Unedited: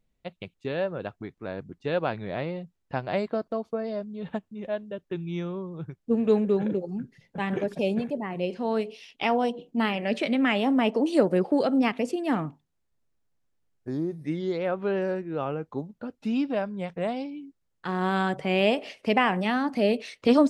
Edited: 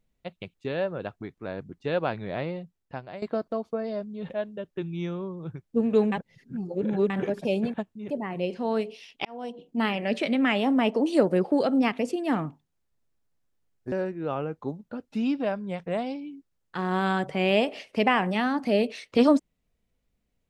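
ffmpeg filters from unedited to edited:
ffmpeg -i in.wav -filter_complex "[0:a]asplit=9[link_01][link_02][link_03][link_04][link_05][link_06][link_07][link_08][link_09];[link_01]atrim=end=3.22,asetpts=PTS-STARTPTS,afade=type=out:start_time=2.51:duration=0.71:silence=0.158489[link_10];[link_02]atrim=start=3.22:end=4.302,asetpts=PTS-STARTPTS,afade=type=in:duration=0.004:curve=hsin:silence=0.158489[link_11];[link_03]atrim=start=4.638:end=6.462[link_12];[link_04]atrim=start=6.458:end=7.442,asetpts=PTS-STARTPTS,areverse[link_13];[link_05]atrim=start=7.438:end=8.082[link_14];[link_06]atrim=start=4.298:end=4.642[link_15];[link_07]atrim=start=8.078:end=9.25,asetpts=PTS-STARTPTS,afade=type=out:start_time=1.168:duration=0.004:curve=hsin[link_16];[link_08]atrim=start=9.25:end=13.922,asetpts=PTS-STARTPTS,afade=type=in:duration=0.61[link_17];[link_09]atrim=start=15.018[link_18];[link_10][link_11]concat=n=2:v=0:a=1[link_19];[link_19][link_12]acrossfade=duration=0.004:curve1=hsin:curve2=hsin[link_20];[link_20][link_13]acrossfade=duration=0.004:curve1=hsin:curve2=hsin[link_21];[link_21][link_14]acrossfade=duration=0.004:curve1=hsin:curve2=hsin[link_22];[link_22][link_15]acrossfade=duration=0.004:curve1=hsin:curve2=hsin[link_23];[link_16][link_17]concat=n=2:v=0:a=1[link_24];[link_23][link_24]acrossfade=duration=0.004:curve1=hsin:curve2=hsin[link_25];[link_25][link_18]acrossfade=duration=0.004:curve1=hsin:curve2=hsin" out.wav

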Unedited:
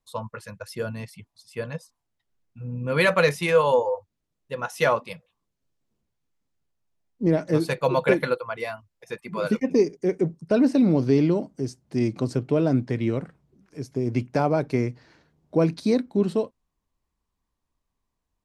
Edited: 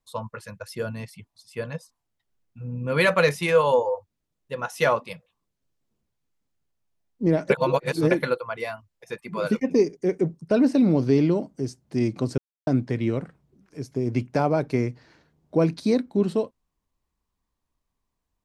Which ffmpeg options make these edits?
ffmpeg -i in.wav -filter_complex "[0:a]asplit=5[link_01][link_02][link_03][link_04][link_05];[link_01]atrim=end=7.502[link_06];[link_02]atrim=start=7.498:end=8.112,asetpts=PTS-STARTPTS,areverse[link_07];[link_03]atrim=start=8.108:end=12.38,asetpts=PTS-STARTPTS,afade=type=out:start_time=4.268:duration=0.004:curve=hsin[link_08];[link_04]atrim=start=12.38:end=12.67,asetpts=PTS-STARTPTS,volume=0[link_09];[link_05]atrim=start=12.67,asetpts=PTS-STARTPTS,afade=type=in:duration=0.004:curve=hsin[link_10];[link_06][link_07]acrossfade=duration=0.004:curve1=hsin:curve2=hsin[link_11];[link_08][link_09][link_10]concat=n=3:v=0:a=1[link_12];[link_11][link_12]acrossfade=duration=0.004:curve1=hsin:curve2=hsin" out.wav

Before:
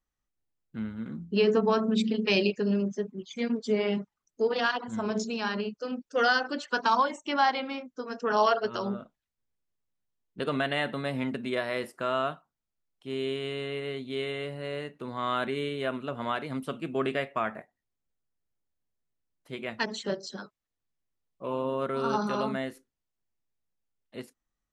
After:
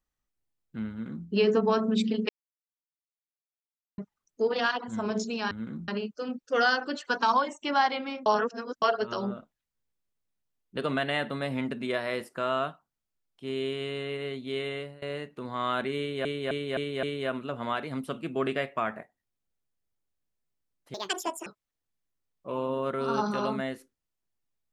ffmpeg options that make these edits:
ffmpeg -i in.wav -filter_complex "[0:a]asplit=14[link_01][link_02][link_03][link_04][link_05][link_06][link_07][link_08][link_09][link_10][link_11][link_12][link_13][link_14];[link_01]atrim=end=2.29,asetpts=PTS-STARTPTS,afade=type=out:start_time=2.286:duration=0.004:curve=hsin[link_15];[link_02]atrim=start=2.29:end=3.98,asetpts=PTS-STARTPTS,volume=0[link_16];[link_03]atrim=start=3.98:end=5.512,asetpts=PTS-STARTPTS,afade=type=in:duration=0.004:curve=hsin[link_17];[link_04]atrim=start=0.898:end=1.272[link_18];[link_05]atrim=start=5.508:end=7.892[link_19];[link_06]atrim=start=7.888:end=8.452,asetpts=PTS-STARTPTS,areverse[link_20];[link_07]atrim=start=8.448:end=14.65,asetpts=PTS-STARTPTS,afade=type=out:start_time=5.942:duration=0.26:silence=0.0841395[link_21];[link_08]atrim=start=14.65:end=15.882,asetpts=PTS-STARTPTS,afade=type=in:duration=0.004:curve=hsin:silence=0.0841395[link_22];[link_09]atrim=start=15.618:end=15.882[link_23];[link_10]atrim=start=15.618:end=15.882[link_24];[link_11]atrim=start=15.618:end=15.882[link_25];[link_12]atrim=start=15.618:end=19.534[link_26];[link_13]atrim=start=19.53:end=20.42,asetpts=PTS-STARTPTS,asetrate=74970,aresample=44100[link_27];[link_14]atrim=start=20.416[link_28];[link_15][link_16][link_17]concat=n=3:v=0:a=1[link_29];[link_29][link_18]acrossfade=duration=0.004:curve1=hsin:curve2=hsin[link_30];[link_30][link_19]acrossfade=duration=0.004:curve1=hsin:curve2=hsin[link_31];[link_31][link_20]acrossfade=duration=0.004:curve1=hsin:curve2=hsin[link_32];[link_21][link_22]concat=n=2:v=0:a=1[link_33];[link_32][link_33]acrossfade=duration=0.004:curve1=hsin:curve2=hsin[link_34];[link_34][link_23]acrossfade=duration=0.004:curve1=hsin:curve2=hsin[link_35];[link_35][link_24]acrossfade=duration=0.004:curve1=hsin:curve2=hsin[link_36];[link_36][link_25]acrossfade=duration=0.004:curve1=hsin:curve2=hsin[link_37];[link_37][link_26]acrossfade=duration=0.004:curve1=hsin:curve2=hsin[link_38];[link_38][link_27]acrossfade=duration=0.004:curve1=hsin:curve2=hsin[link_39];[link_39][link_28]acrossfade=duration=0.004:curve1=hsin:curve2=hsin" out.wav

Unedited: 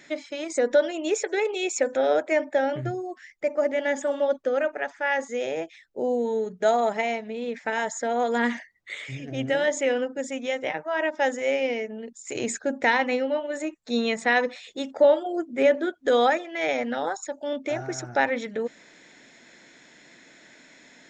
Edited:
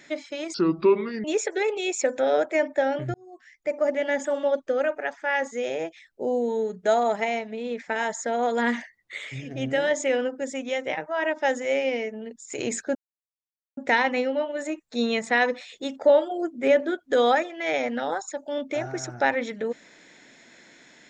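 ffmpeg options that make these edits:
ffmpeg -i in.wav -filter_complex "[0:a]asplit=5[link_01][link_02][link_03][link_04][link_05];[link_01]atrim=end=0.544[link_06];[link_02]atrim=start=0.54:end=1.01,asetpts=PTS-STARTPTS,asetrate=29547,aresample=44100[link_07];[link_03]atrim=start=1.006:end=2.91,asetpts=PTS-STARTPTS,afade=type=out:start_time=1.9:duration=0.004:curve=hsin[link_08];[link_04]atrim=start=2.91:end=12.72,asetpts=PTS-STARTPTS,afade=type=in:duration=0.63,afade=type=out:start_time=9.806:duration=0.004:curve=hsin,apad=pad_dur=0.82[link_09];[link_05]atrim=start=12.72,asetpts=PTS-STARTPTS,afade=type=in:duration=0.004:curve=hsin[link_10];[link_06][link_07]acrossfade=duration=0.004:curve1=hsin:curve2=hsin[link_11];[link_08][link_09][link_10]concat=n=3:v=0:a=1[link_12];[link_11][link_12]acrossfade=duration=0.004:curve1=hsin:curve2=hsin" out.wav

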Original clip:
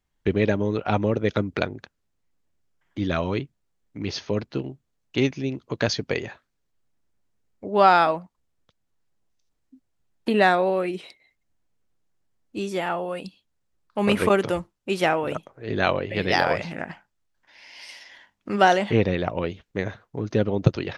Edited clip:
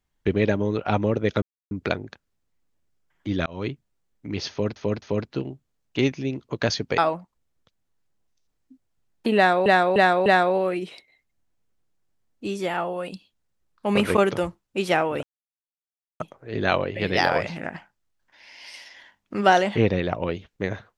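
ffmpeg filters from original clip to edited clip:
ffmpeg -i in.wav -filter_complex "[0:a]asplit=10[link_01][link_02][link_03][link_04][link_05][link_06][link_07][link_08][link_09][link_10];[link_01]atrim=end=1.42,asetpts=PTS-STARTPTS,afade=type=out:start_time=1.416:duration=0.004:curve=hsin,apad=pad_dur=0.29[link_11];[link_02]atrim=start=1.42:end=3.17,asetpts=PTS-STARTPTS,afade=type=in:duration=0.004:curve=hsin,afade=type=out:start_time=1.746:duration=0.004:curve=hsin[link_12];[link_03]atrim=start=3.17:end=4.472,asetpts=PTS-STARTPTS,afade=type=in:duration=0.25[link_13];[link_04]atrim=start=4.208:end=4.472[link_14];[link_05]atrim=start=4.208:end=6.172[link_15];[link_06]atrim=start=7.998:end=10.682[link_16];[link_07]atrim=start=10.378:end=10.682[link_17];[link_08]atrim=start=10.378:end=10.682[link_18];[link_09]atrim=start=10.378:end=15.35,asetpts=PTS-STARTPTS,afade=type=out:start_time=4.968:duration=0.004:curve=hsin,apad=pad_dur=0.97[link_19];[link_10]atrim=start=15.35,asetpts=PTS-STARTPTS,afade=type=in:duration=0.004:curve=hsin[link_20];[link_11][link_12][link_13]concat=n=3:v=0:a=1[link_21];[link_21][link_14]acrossfade=duration=0.004:curve1=hsin:curve2=hsin[link_22];[link_22][link_15]acrossfade=duration=0.004:curve1=hsin:curve2=hsin[link_23];[link_23][link_16]acrossfade=duration=0.004:curve1=hsin:curve2=hsin[link_24];[link_24][link_17]acrossfade=duration=0.004:curve1=hsin:curve2=hsin[link_25];[link_25][link_18]acrossfade=duration=0.004:curve1=hsin:curve2=hsin[link_26];[link_19][link_20]concat=n=2:v=0:a=1[link_27];[link_26][link_27]acrossfade=duration=0.004:curve1=hsin:curve2=hsin" out.wav

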